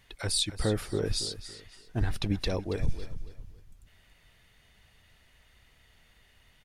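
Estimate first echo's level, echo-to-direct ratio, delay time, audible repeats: -13.5 dB, -13.0 dB, 279 ms, 3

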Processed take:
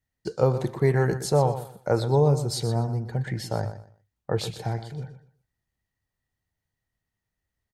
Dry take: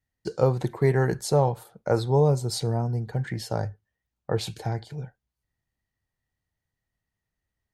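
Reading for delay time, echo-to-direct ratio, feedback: 122 ms, -11.5 dB, 23%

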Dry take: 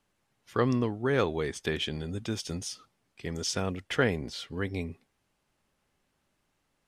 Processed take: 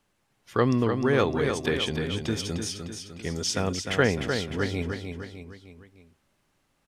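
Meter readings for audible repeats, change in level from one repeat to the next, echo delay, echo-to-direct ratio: 4, -6.0 dB, 303 ms, -5.5 dB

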